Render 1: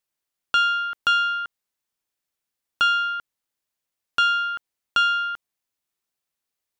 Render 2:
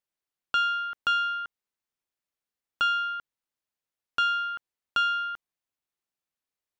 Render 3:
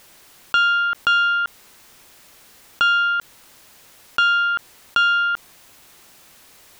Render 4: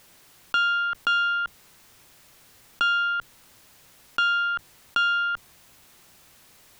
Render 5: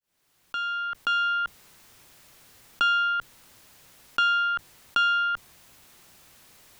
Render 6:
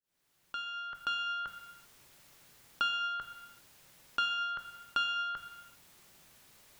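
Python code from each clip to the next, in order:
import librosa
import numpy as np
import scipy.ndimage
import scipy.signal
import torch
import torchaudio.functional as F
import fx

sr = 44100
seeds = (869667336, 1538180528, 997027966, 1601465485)

y1 = fx.high_shelf(x, sr, hz=4200.0, db=-6.0)
y1 = y1 * librosa.db_to_amplitude(-4.5)
y2 = fx.env_flatten(y1, sr, amount_pct=50)
y2 = y2 * librosa.db_to_amplitude(7.0)
y3 = fx.octave_divider(y2, sr, octaves=1, level_db=-6.0)
y3 = y3 * librosa.db_to_amplitude(-5.5)
y4 = fx.fade_in_head(y3, sr, length_s=1.47)
y5 = fx.rev_gated(y4, sr, seeds[0], gate_ms=420, shape='falling', drr_db=5.5)
y5 = y5 * librosa.db_to_amplitude(-7.0)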